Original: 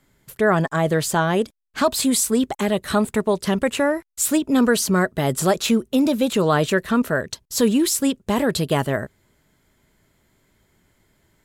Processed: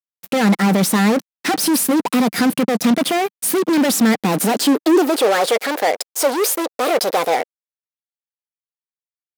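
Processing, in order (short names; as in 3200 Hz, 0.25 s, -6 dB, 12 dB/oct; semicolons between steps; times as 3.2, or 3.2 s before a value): fuzz box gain 29 dB, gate -37 dBFS; wide varispeed 1.22×; high-pass sweep 200 Hz -> 510 Hz, 4.2–5.42; gain -3.5 dB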